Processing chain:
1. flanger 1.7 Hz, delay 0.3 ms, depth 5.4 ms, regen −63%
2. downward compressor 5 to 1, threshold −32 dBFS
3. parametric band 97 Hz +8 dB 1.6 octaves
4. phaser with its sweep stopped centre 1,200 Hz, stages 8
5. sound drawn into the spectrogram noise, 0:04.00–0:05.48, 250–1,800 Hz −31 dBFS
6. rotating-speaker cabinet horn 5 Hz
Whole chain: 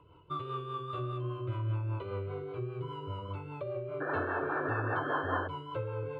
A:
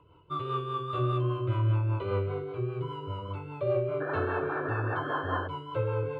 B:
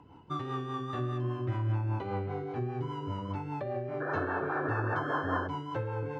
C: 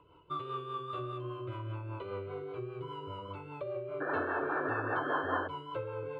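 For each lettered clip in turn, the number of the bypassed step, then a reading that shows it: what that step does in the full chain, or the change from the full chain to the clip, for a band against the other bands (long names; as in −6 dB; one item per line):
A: 2, change in crest factor −2.0 dB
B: 4, 250 Hz band +4.0 dB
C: 3, 125 Hz band −7.0 dB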